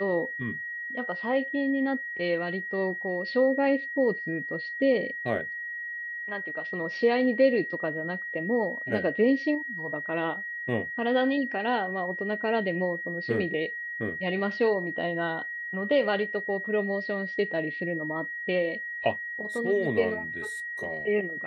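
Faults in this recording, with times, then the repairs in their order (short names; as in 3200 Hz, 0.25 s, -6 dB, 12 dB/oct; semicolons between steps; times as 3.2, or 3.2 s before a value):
tone 1900 Hz -33 dBFS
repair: notch 1900 Hz, Q 30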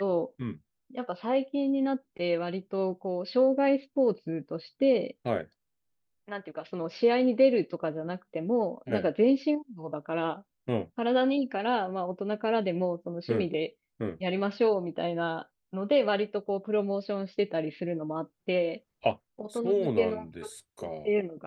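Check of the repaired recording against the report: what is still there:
none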